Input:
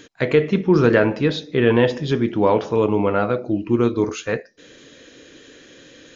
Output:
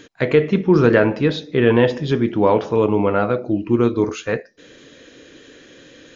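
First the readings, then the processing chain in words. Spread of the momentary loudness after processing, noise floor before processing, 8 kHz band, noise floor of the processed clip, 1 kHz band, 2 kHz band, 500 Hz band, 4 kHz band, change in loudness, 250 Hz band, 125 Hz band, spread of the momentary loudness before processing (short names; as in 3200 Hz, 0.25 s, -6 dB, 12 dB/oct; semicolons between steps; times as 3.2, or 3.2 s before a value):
7 LU, -47 dBFS, n/a, -47 dBFS, +1.5 dB, +1.0 dB, +1.5 dB, -0.5 dB, +1.5 dB, +1.5 dB, +1.5 dB, 7 LU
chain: high shelf 4700 Hz -5 dB; gain +1.5 dB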